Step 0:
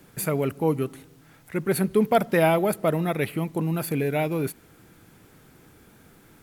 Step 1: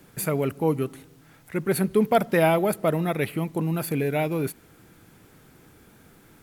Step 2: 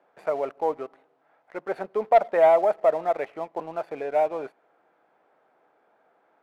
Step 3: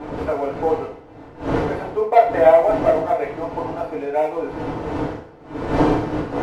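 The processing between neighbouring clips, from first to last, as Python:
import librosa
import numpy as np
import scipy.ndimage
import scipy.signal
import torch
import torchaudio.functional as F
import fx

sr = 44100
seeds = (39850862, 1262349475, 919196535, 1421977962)

y1 = x
y2 = fx.ladder_bandpass(y1, sr, hz=780.0, resonance_pct=50)
y2 = fx.leveller(y2, sr, passes=1)
y2 = y2 * librosa.db_to_amplitude(8.0)
y3 = fx.dmg_wind(y2, sr, seeds[0], corner_hz=550.0, level_db=-31.0)
y3 = fx.rev_fdn(y3, sr, rt60_s=0.5, lf_ratio=0.7, hf_ratio=0.95, size_ms=20.0, drr_db=-6.0)
y3 = y3 * librosa.db_to_amplitude(-2.0)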